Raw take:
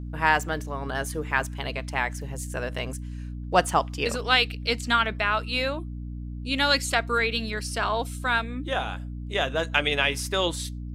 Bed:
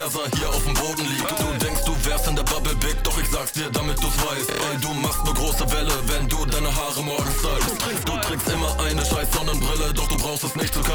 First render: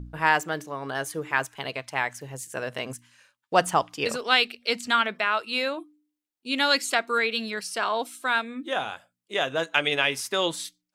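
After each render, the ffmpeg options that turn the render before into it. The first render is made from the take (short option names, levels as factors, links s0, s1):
-af "bandreject=f=60:t=h:w=4,bandreject=f=120:t=h:w=4,bandreject=f=180:t=h:w=4,bandreject=f=240:t=h:w=4,bandreject=f=300:t=h:w=4"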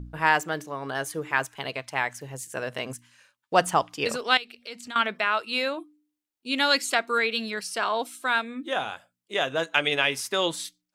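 -filter_complex "[0:a]asettb=1/sr,asplit=3[s0][s1][s2];[s0]atrim=end=4.374[s3];[s1]atrim=start=4.37:end=4.96,asetpts=PTS-STARTPTS,afade=t=in:d=0.004:c=qsin,afade=t=out:st=0.586:d=0.004:c=qsin,acompressor=threshold=0.00891:ratio=2.5:attack=3.2:release=140:knee=1:detection=peak[s4];[s2]atrim=start=4.956[s5];[s3][s4]acrossfade=d=0.004:c1=hsin:c2=qsin[s6];[s6][s5]acrossfade=d=0.004:c1=qsin:c2=hsin"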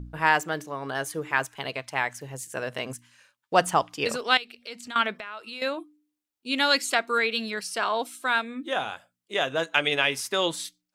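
-filter_complex "[0:a]asettb=1/sr,asplit=3[s0][s1][s2];[s0]atrim=end=5.194[s3];[s1]atrim=start=5.19:end=5.62,asetpts=PTS-STARTPTS,afade=t=in:d=0.004:c=qsin,afade=t=out:st=0.426:d=0.004:c=qsin,acompressor=threshold=0.0158:ratio=4:attack=3.2:release=140:knee=1:detection=peak[s4];[s2]atrim=start=5.616[s5];[s3][s4]acrossfade=d=0.004:c1=hsin:c2=qsin[s6];[s6][s5]acrossfade=d=0.004:c1=qsin:c2=hsin"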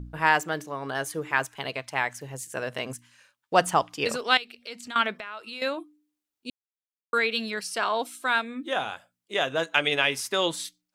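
-filter_complex "[0:a]asplit=3[s0][s1][s2];[s0]atrim=end=6.5,asetpts=PTS-STARTPTS,afade=t=out:st=6.496:d=0.004:c=hsin[s3];[s1]atrim=start=6.5:end=7.13,asetpts=PTS-STARTPTS,volume=0[s4];[s2]atrim=start=7.13,asetpts=PTS-STARTPTS,afade=t=in:d=0.004:c=hsin[s5];[s3][s4][s5]concat=n=3:v=0:a=1"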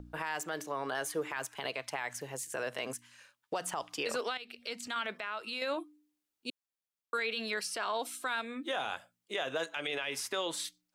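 -filter_complex "[0:a]acrossover=split=300|3200[s0][s1][s2];[s0]acompressor=threshold=0.00251:ratio=4[s3];[s1]acompressor=threshold=0.0501:ratio=4[s4];[s2]acompressor=threshold=0.0141:ratio=4[s5];[s3][s4][s5]amix=inputs=3:normalize=0,alimiter=level_in=1.06:limit=0.0631:level=0:latency=1:release=39,volume=0.944"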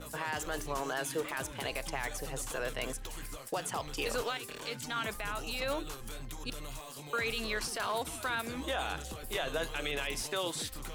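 -filter_complex "[1:a]volume=0.0891[s0];[0:a][s0]amix=inputs=2:normalize=0"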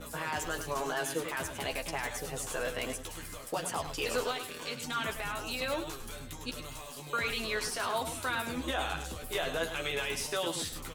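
-filter_complex "[0:a]asplit=2[s0][s1];[s1]adelay=12,volume=0.562[s2];[s0][s2]amix=inputs=2:normalize=0,asplit=2[s3][s4];[s4]aecho=0:1:103:0.335[s5];[s3][s5]amix=inputs=2:normalize=0"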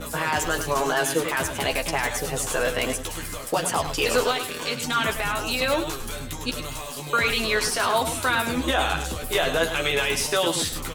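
-af "volume=3.35"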